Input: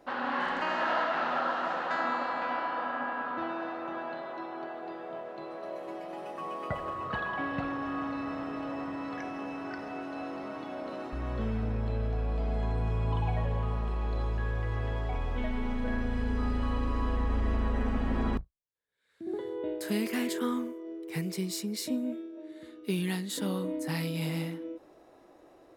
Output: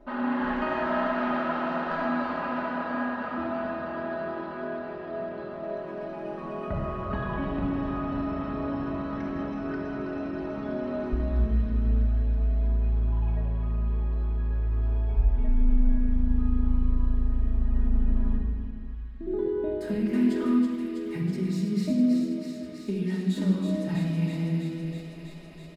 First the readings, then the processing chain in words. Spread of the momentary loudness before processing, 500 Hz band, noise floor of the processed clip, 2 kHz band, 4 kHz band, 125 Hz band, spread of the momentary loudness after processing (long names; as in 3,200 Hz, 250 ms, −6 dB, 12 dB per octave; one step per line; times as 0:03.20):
9 LU, +4.0 dB, −38 dBFS, −1.0 dB, can't be measured, +5.0 dB, 9 LU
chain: RIAA equalisation playback
comb filter 4.8 ms, depth 48%
downward compressor 6 to 1, threshold −24 dBFS, peak gain reduction 15.5 dB
on a send: delay with a high-pass on its return 325 ms, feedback 81%, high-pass 2,200 Hz, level −5 dB
on the sum: rectangular room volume 3,100 cubic metres, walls mixed, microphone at 2.7 metres
level −3 dB